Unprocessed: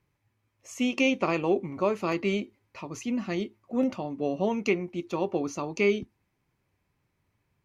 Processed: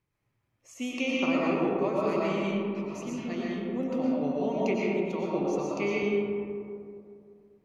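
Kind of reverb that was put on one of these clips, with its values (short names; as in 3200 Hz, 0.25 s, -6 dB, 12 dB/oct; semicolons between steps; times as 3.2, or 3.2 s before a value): digital reverb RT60 2.5 s, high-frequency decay 0.35×, pre-delay 75 ms, DRR -5.5 dB; gain -7.5 dB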